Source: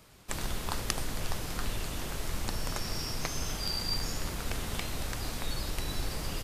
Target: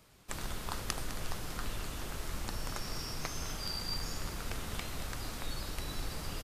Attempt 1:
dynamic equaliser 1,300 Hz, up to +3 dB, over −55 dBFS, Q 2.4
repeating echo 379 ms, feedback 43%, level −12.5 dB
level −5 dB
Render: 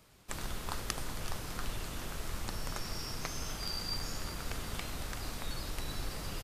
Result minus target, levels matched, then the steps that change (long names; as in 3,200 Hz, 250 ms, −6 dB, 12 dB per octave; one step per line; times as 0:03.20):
echo 173 ms late
change: repeating echo 206 ms, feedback 43%, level −12.5 dB